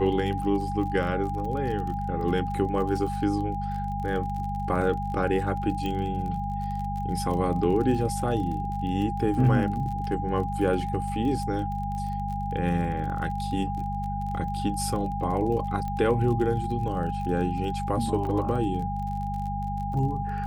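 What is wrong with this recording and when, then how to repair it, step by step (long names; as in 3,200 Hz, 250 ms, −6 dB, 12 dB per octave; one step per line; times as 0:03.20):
surface crackle 35 per second −34 dBFS
mains hum 50 Hz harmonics 4 −32 dBFS
whistle 810 Hz −31 dBFS
0:05.86: click −19 dBFS
0:15.88: click −22 dBFS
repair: click removal
hum removal 50 Hz, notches 4
notch filter 810 Hz, Q 30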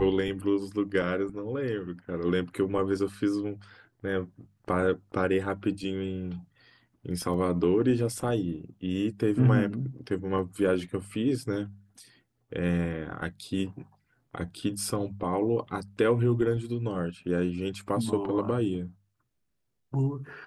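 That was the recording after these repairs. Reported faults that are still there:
none of them is left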